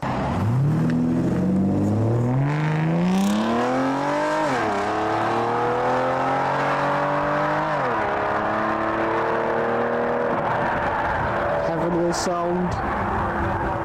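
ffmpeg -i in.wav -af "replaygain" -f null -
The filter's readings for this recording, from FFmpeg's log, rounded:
track_gain = +5.8 dB
track_peak = 0.117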